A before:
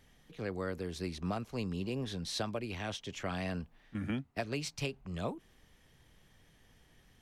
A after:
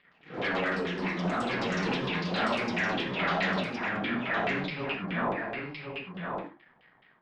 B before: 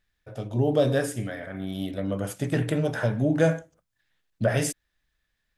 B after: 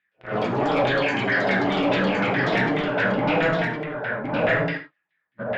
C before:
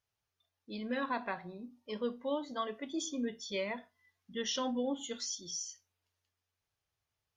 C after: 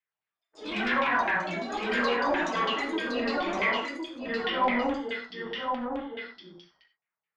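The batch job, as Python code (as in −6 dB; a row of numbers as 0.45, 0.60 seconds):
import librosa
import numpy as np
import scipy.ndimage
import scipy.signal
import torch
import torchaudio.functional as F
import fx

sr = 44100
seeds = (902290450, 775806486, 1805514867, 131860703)

p1 = fx.phase_scramble(x, sr, seeds[0], window_ms=200)
p2 = scipy.signal.sosfilt(scipy.signal.butter(4, 140.0, 'highpass', fs=sr, output='sos'), p1)
p3 = fx.peak_eq(p2, sr, hz=2100.0, db=7.5, octaves=0.61)
p4 = fx.leveller(p3, sr, passes=3)
p5 = fx.over_compress(p4, sr, threshold_db=-25.0, ratio=-0.5)
p6 = p4 + (p5 * 10.0 ** (0.0 / 20.0))
p7 = scipy.signal.sosfilt(scipy.signal.cheby1(6, 3, 5100.0, 'lowpass', fs=sr, output='sos'), p6)
p8 = fx.filter_lfo_lowpass(p7, sr, shape='saw_down', hz=4.7, low_hz=710.0, high_hz=2900.0, q=2.6)
p9 = fx.echo_pitch(p8, sr, ms=116, semitones=6, count=2, db_per_echo=-6.0)
p10 = p9 + 10.0 ** (-4.5 / 20.0) * np.pad(p9, (int(1064 * sr / 1000.0), 0))[:len(p9)]
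p11 = fx.rev_gated(p10, sr, seeds[1], gate_ms=110, shape='flat', drr_db=7.5)
y = p11 * 10.0 ** (-8.0 / 20.0)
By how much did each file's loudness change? +8.0, +4.0, +9.5 LU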